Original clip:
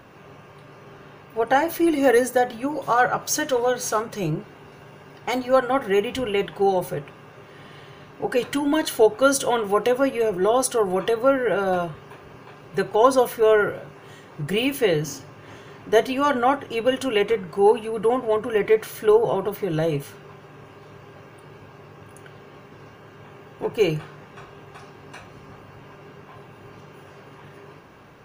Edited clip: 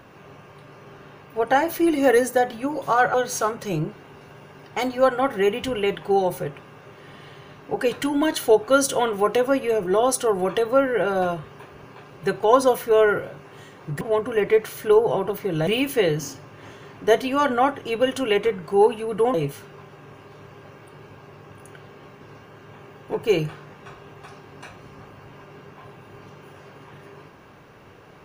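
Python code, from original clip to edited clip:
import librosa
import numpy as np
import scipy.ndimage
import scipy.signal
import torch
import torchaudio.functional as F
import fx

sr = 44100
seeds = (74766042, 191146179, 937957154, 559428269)

y = fx.edit(x, sr, fx.cut(start_s=3.14, length_s=0.51),
    fx.move(start_s=18.19, length_s=1.66, to_s=14.52), tone=tone)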